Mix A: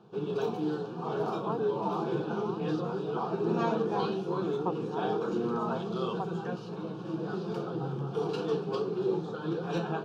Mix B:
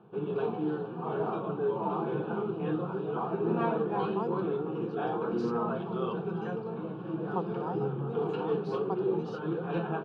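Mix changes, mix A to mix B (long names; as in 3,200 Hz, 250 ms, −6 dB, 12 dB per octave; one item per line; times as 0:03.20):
speech: entry +2.70 s
background: add low-pass filter 2,800 Hz 24 dB per octave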